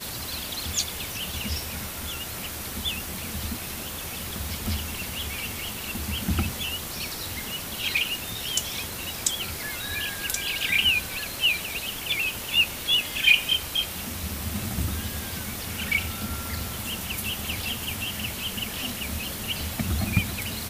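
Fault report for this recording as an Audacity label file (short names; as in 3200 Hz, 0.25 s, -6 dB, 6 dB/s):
9.430000	9.430000	pop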